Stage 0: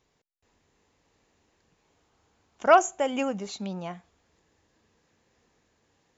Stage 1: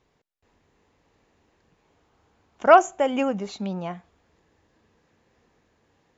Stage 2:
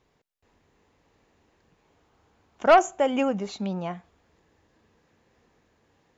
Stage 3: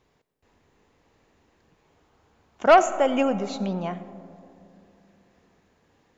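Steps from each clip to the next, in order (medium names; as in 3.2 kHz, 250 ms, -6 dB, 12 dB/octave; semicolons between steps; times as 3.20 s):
low-pass 2.7 kHz 6 dB/octave; trim +4.5 dB
saturation -8.5 dBFS, distortion -14 dB
algorithmic reverb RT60 2.8 s, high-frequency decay 0.25×, pre-delay 40 ms, DRR 13.5 dB; trim +1.5 dB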